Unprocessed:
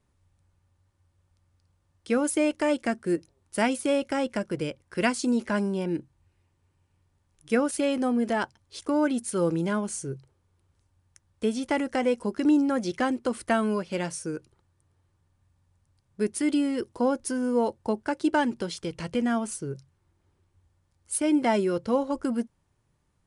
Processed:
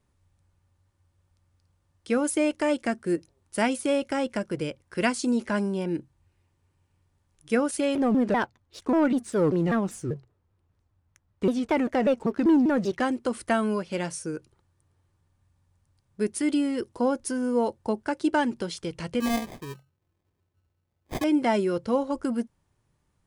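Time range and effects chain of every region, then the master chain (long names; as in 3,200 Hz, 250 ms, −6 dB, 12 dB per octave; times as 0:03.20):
0:07.95–0:13.00: low-pass filter 2,200 Hz 6 dB per octave + leveller curve on the samples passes 1 + pitch modulation by a square or saw wave saw down 5.1 Hz, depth 250 cents
0:19.20–0:21.24: high-pass filter 63 Hz + sample-rate reduction 1,400 Hz + expander for the loud parts, over −35 dBFS
whole clip: no processing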